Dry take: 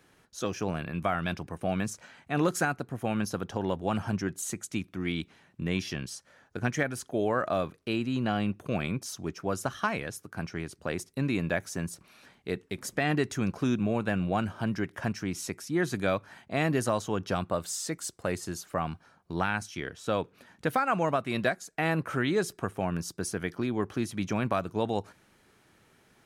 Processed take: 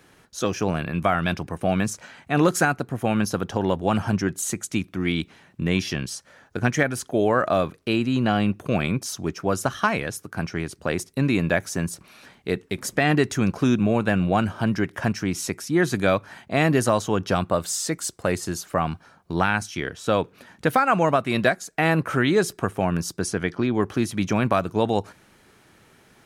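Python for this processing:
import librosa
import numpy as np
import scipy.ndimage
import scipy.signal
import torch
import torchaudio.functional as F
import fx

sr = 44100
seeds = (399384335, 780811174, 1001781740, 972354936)

y = fx.lowpass(x, sr, hz=fx.line((23.18, 11000.0), (23.73, 4400.0)), slope=12, at=(23.18, 23.73), fade=0.02)
y = y * librosa.db_to_amplitude(7.5)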